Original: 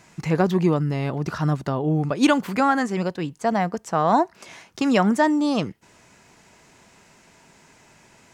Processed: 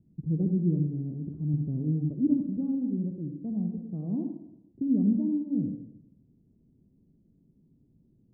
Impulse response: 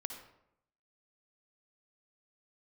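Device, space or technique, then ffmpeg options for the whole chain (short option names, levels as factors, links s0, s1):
next room: -filter_complex "[0:a]lowpass=f=280:w=0.5412,lowpass=f=280:w=1.3066[s0];[1:a]atrim=start_sample=2205[s1];[s0][s1]afir=irnorm=-1:irlink=0,asettb=1/sr,asplit=3[s2][s3][s4];[s2]atrim=end=0.874[s5];[s3]atrim=start=0.87:end=1.54,asetpts=PTS-STARTPTS,afade=t=in:d=0.004:c=qsin,afade=t=out:st=0.666:d=0.004:c=qsin,lowshelf=f=390:g=-4[s6];[s4]atrim=start=1.536[s7];[s5][s6]acrossfade=d=0.004:c1=hsin:c2=qsin[s8];[s8][s7]acrossfade=d=0.004:c1=qsin:c2=hsin,volume=0.841"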